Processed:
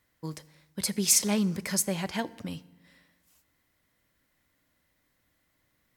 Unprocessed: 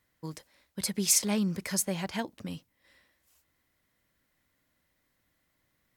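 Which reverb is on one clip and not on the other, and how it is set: FDN reverb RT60 1.1 s, low-frequency decay 1.35×, high-frequency decay 0.75×, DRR 17 dB; gain +2 dB

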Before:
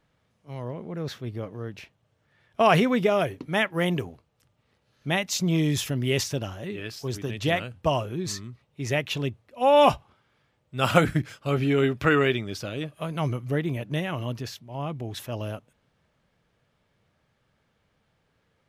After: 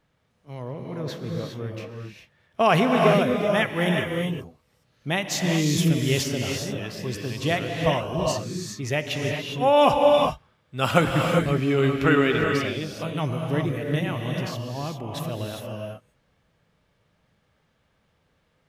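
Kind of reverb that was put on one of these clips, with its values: non-linear reverb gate 0.43 s rising, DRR 1.5 dB

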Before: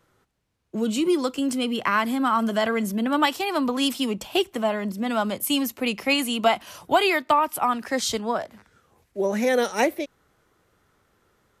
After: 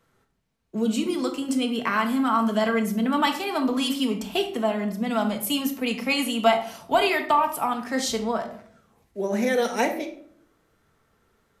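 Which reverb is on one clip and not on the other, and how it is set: shoebox room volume 850 m³, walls furnished, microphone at 1.6 m; gain -3 dB

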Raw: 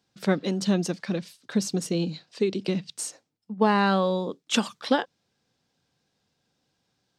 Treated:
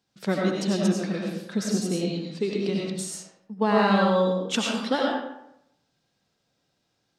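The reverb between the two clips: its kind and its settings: digital reverb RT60 0.79 s, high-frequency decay 0.65×, pre-delay 55 ms, DRR -2.5 dB; gain -3 dB

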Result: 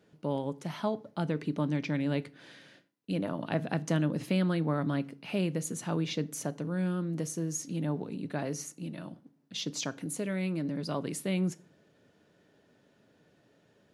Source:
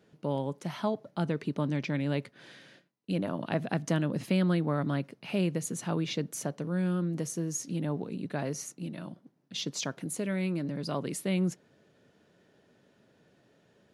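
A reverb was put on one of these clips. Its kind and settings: FDN reverb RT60 0.41 s, low-frequency decay 1.35×, high-frequency decay 0.85×, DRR 15 dB; gain -1 dB

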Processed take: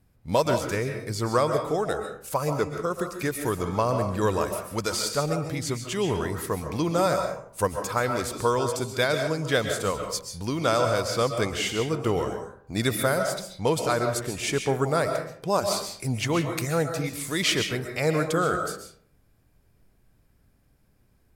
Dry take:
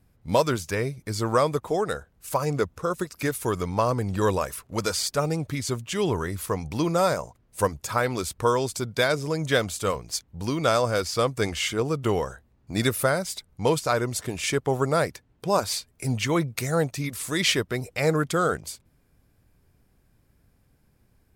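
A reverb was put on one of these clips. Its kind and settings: digital reverb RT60 0.58 s, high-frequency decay 0.55×, pre-delay 95 ms, DRR 5 dB; gain -1.5 dB

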